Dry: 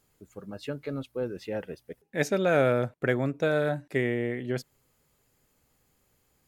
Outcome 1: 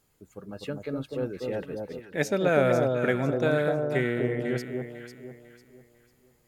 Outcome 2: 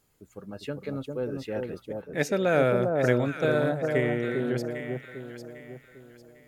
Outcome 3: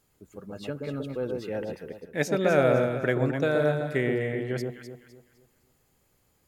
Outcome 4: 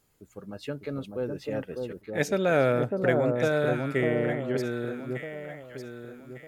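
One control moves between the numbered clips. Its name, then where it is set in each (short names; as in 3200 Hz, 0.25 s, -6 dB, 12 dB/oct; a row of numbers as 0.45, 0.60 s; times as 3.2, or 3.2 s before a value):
echo with dull and thin repeats by turns, time: 0.249, 0.4, 0.127, 0.601 s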